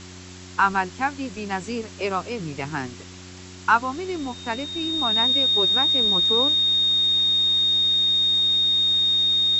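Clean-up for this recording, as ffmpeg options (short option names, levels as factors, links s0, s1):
-af "bandreject=f=91.4:t=h:w=4,bandreject=f=182.8:t=h:w=4,bandreject=f=274.2:t=h:w=4,bandreject=f=365.6:t=h:w=4,bandreject=f=3700:w=30,afwtdn=0.0089"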